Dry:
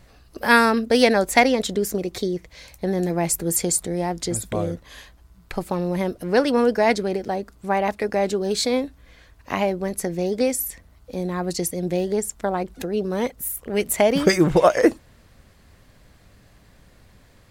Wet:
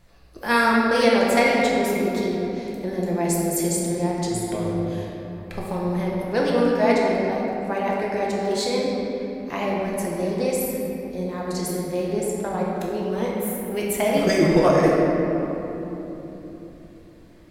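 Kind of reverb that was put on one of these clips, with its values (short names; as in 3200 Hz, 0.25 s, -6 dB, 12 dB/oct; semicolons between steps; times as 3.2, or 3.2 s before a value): shoebox room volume 210 m³, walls hard, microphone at 0.8 m; gain -6.5 dB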